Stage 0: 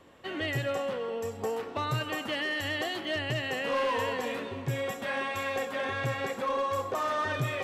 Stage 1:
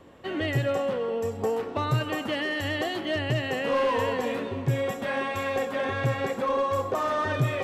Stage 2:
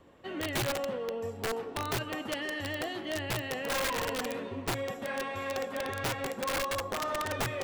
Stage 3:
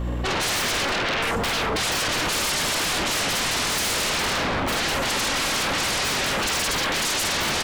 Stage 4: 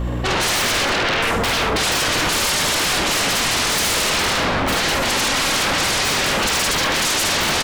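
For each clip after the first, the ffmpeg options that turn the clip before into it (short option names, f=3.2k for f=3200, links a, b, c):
-af "tiltshelf=f=870:g=3.5,volume=3.5dB"
-filter_complex "[0:a]acrossover=split=5300[a][b];[b]alimiter=level_in=20dB:limit=-24dB:level=0:latency=1,volume=-20dB[c];[a][c]amix=inputs=2:normalize=0,flanger=delay=0.6:depth=7.8:regen=78:speed=0.83:shape=triangular,aeval=exprs='(mod(15.8*val(0)+1,2)-1)/15.8':c=same,volume=-2dB"
-filter_complex "[0:a]asplit=2[a][b];[b]adelay=48,volume=-3dB[c];[a][c]amix=inputs=2:normalize=0,aeval=exprs='val(0)+0.00447*(sin(2*PI*60*n/s)+sin(2*PI*2*60*n/s)/2+sin(2*PI*3*60*n/s)/3+sin(2*PI*4*60*n/s)/4+sin(2*PI*5*60*n/s)/5)':c=same,aeval=exprs='0.0891*sin(PI/2*8.91*val(0)/0.0891)':c=same"
-af "aecho=1:1:74:0.355,volume=4.5dB"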